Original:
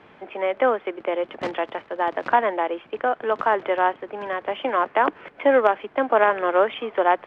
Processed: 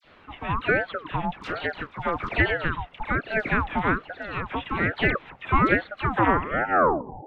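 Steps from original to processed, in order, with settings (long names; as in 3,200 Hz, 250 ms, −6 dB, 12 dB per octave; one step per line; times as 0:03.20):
turntable brake at the end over 1.07 s
all-pass dispersion lows, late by 80 ms, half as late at 1,400 Hz
ring modulator whose carrier an LFO sweeps 720 Hz, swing 55%, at 1.2 Hz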